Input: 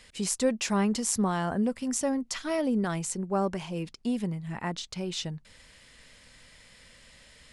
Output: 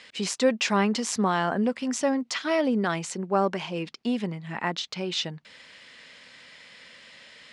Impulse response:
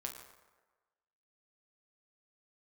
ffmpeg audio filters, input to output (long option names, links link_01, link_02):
-af "highpass=200,lowpass=4100,tiltshelf=frequency=1200:gain=-3,volume=6.5dB"